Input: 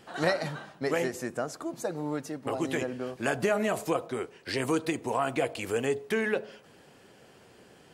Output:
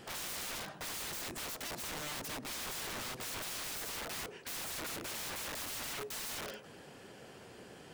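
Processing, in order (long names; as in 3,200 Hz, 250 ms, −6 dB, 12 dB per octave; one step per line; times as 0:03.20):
brickwall limiter −23.5 dBFS, peak gain reduction 10.5 dB
dynamic equaliser 630 Hz, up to +3 dB, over −43 dBFS, Q 1.7
wrap-around overflow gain 39 dB
level +2.5 dB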